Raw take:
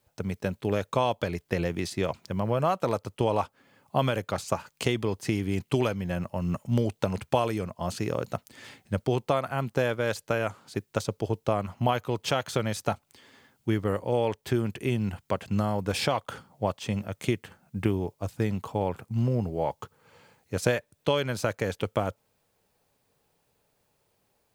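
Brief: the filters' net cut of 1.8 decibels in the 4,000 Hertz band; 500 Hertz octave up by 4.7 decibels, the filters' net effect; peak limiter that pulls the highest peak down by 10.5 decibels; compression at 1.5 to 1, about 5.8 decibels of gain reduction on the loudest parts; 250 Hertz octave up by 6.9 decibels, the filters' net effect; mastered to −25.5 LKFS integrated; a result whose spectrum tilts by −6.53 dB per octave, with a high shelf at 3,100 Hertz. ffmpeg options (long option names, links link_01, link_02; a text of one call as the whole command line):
ffmpeg -i in.wav -af "equalizer=frequency=250:width_type=o:gain=8,equalizer=frequency=500:width_type=o:gain=3.5,highshelf=frequency=3100:gain=4.5,equalizer=frequency=4000:width_type=o:gain=-6,acompressor=threshold=-33dB:ratio=1.5,volume=8dB,alimiter=limit=-12.5dB:level=0:latency=1" out.wav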